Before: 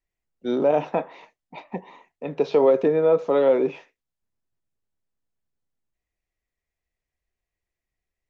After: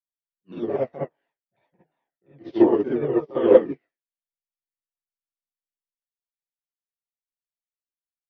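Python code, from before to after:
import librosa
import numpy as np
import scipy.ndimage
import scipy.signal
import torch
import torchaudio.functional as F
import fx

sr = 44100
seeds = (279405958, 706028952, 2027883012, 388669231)

y = fx.pitch_ramps(x, sr, semitones=-6.0, every_ms=174)
y = fx.rev_gated(y, sr, seeds[0], gate_ms=90, shape='rising', drr_db=-6.0)
y = fx.upward_expand(y, sr, threshold_db=-32.0, expansion=2.5)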